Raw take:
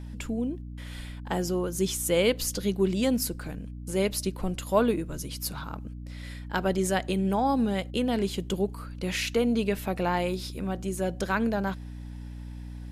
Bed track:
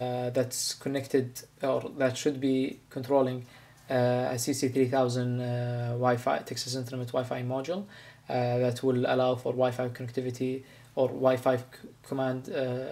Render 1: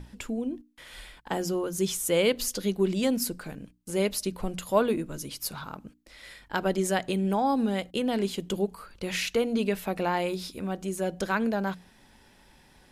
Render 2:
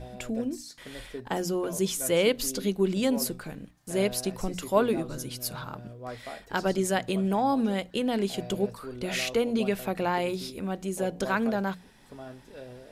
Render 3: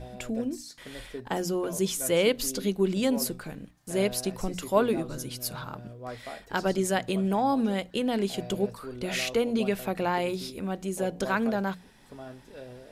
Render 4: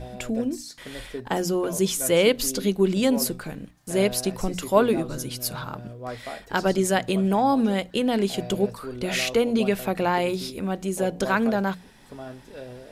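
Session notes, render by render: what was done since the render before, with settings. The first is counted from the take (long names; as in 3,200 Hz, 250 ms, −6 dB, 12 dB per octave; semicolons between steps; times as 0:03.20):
mains-hum notches 60/120/180/240/300 Hz
mix in bed track −13.5 dB
no processing that can be heard
level +4.5 dB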